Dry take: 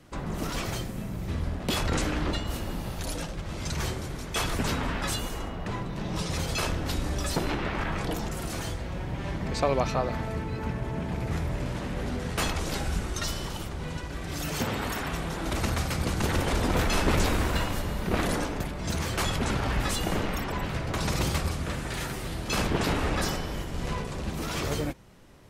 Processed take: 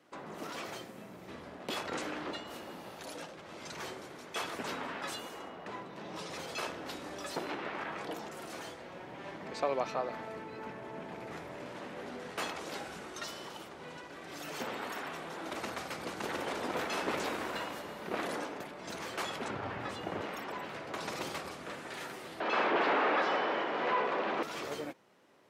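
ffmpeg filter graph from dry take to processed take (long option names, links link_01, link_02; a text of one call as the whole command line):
ffmpeg -i in.wav -filter_complex "[0:a]asettb=1/sr,asplit=3[link_01][link_02][link_03];[link_01]atrim=end=19.484[link_04];[link_02]atrim=start=19.48:end=20.21,asetpts=PTS-STARTPTS,afade=type=in:duration=0.004:curve=qsin,afade=type=out:start_time=0.726:duration=0.004:curve=qsin,lowpass=frequency=2200:poles=1,equalizer=frequency=99:width=1.9:gain=14.5[link_05];[link_03]atrim=start=20.206[link_06];[link_04][link_05]acrossfade=duration=0.004:curve1=hsin:curve2=qsin[link_07];[link_07][link_06]acrossfade=duration=0.004:curve1=qsin:curve2=hsin,asettb=1/sr,asplit=3[link_08][link_09][link_10];[link_08]atrim=end=22.404[link_11];[link_09]atrim=start=22.4:end=24.43,asetpts=PTS-STARTPTS,afade=type=in:duration=0.004:curve=qsin,afade=type=out:start_time=2.026:duration=0.004:curve=qsin,asplit=2[link_12][link_13];[link_13]highpass=frequency=720:poles=1,volume=26dB,asoftclip=type=tanh:threshold=-12dB[link_14];[link_12][link_14]amix=inputs=2:normalize=0,lowpass=frequency=1700:poles=1,volume=-6dB,highpass=190,lowpass=3400[link_15];[link_10]atrim=start=24.426[link_16];[link_11][link_15]acrossfade=duration=0.004:curve1=hsin:curve2=qsin[link_17];[link_17][link_16]acrossfade=duration=0.004:curve1=qsin:curve2=hsin,highpass=340,equalizer=frequency=12000:width_type=o:width=2.2:gain=-8,volume=-5.5dB" out.wav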